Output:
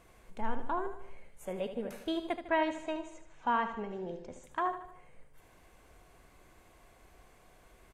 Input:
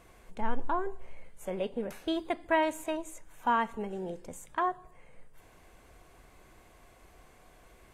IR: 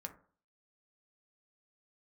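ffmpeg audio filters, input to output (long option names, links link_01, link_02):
-filter_complex "[0:a]asettb=1/sr,asplit=3[link_01][link_02][link_03];[link_01]atrim=end=2.374[link_04];[link_02]atrim=start=2.37:end=4.44,asetpts=PTS-STARTPTS,afade=type=in:duration=0.004:curve=qsin,afade=type=out:start_time=2.066:duration=0.004:curve=qsin,lowpass=frequency=6100:width=0.5412,lowpass=frequency=6100:width=1.3066[link_05];[link_03]atrim=start=4.436[link_06];[link_04][link_05]acrossfade=duration=0.004:curve1=hsin:curve2=qsin[link_07];[link_07][link_06]acrossfade=duration=0.004:curve1=qsin:curve2=hsin,aecho=1:1:76|152|228|304|380:0.316|0.152|0.0729|0.035|0.0168,volume=-3dB"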